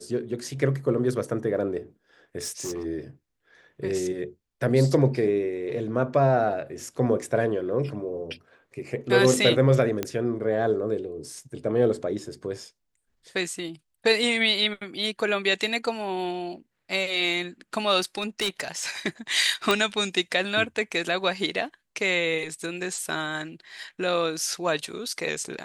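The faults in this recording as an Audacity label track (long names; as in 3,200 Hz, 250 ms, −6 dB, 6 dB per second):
2.380000	2.860000	clipping −28 dBFS
10.030000	10.030000	click −12 dBFS
18.020000	18.840000	clipping −22 dBFS
19.710000	19.710000	click −7 dBFS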